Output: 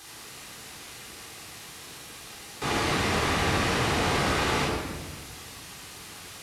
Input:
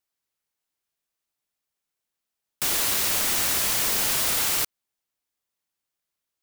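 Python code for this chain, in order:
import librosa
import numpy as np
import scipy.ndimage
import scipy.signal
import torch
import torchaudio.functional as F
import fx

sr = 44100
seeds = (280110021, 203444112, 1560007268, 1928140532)

y = fx.delta_mod(x, sr, bps=64000, step_db=-41.0)
y = scipy.signal.sosfilt(scipy.signal.butter(2, 44.0, 'highpass', fs=sr, output='sos'), y)
y = fx.high_shelf(y, sr, hz=8700.0, db=-5.0)
y = fx.room_shoebox(y, sr, seeds[0], volume_m3=1100.0, walls='mixed', distance_m=3.8)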